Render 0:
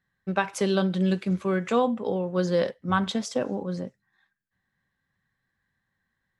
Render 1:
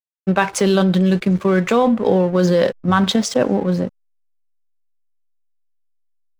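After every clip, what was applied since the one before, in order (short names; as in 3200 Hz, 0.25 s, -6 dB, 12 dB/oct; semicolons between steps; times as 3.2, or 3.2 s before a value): in parallel at -0.5 dB: negative-ratio compressor -26 dBFS, ratio -0.5; on the sum: backlash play -35 dBFS; gain +5.5 dB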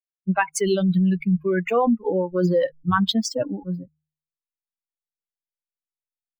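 per-bin expansion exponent 3; de-hum 76.84 Hz, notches 2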